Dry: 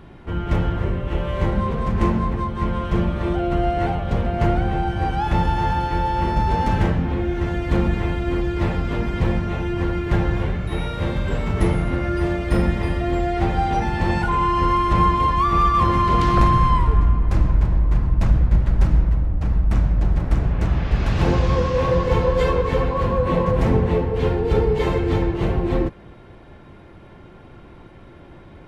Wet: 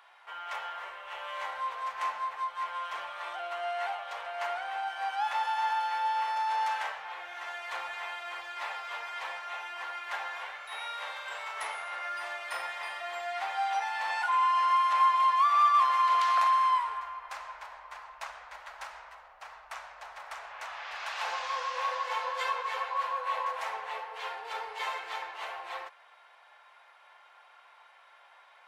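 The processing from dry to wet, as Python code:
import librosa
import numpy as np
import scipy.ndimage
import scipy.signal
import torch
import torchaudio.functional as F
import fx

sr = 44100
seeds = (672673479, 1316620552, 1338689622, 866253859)

y = scipy.signal.sosfilt(scipy.signal.cheby2(4, 50, 310.0, 'highpass', fs=sr, output='sos'), x)
y = y * 10.0 ** (-4.0 / 20.0)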